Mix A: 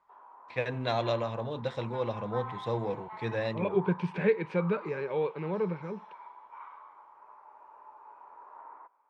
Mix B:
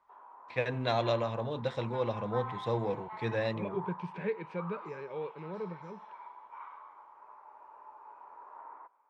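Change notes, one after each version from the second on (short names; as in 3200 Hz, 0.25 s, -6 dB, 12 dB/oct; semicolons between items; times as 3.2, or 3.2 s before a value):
second voice -8.5 dB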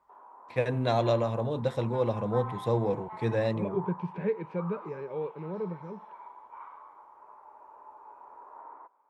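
first voice: remove air absorption 140 m; master: add tilt shelf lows +6 dB, about 1200 Hz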